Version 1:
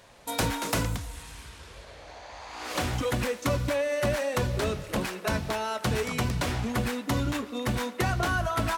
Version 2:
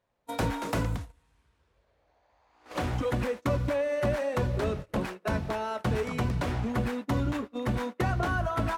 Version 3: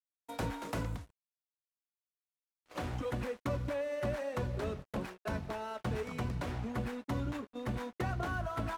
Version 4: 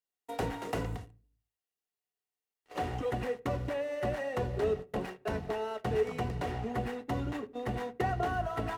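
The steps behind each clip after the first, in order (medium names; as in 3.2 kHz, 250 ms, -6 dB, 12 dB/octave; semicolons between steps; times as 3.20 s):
gate -34 dBFS, range -22 dB; treble shelf 2.5 kHz -12 dB
crossover distortion -49 dBFS; trim -7 dB
small resonant body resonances 430/730/1900/2800 Hz, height 11 dB, ringing for 40 ms; on a send at -21 dB: reverberation RT60 0.45 s, pre-delay 46 ms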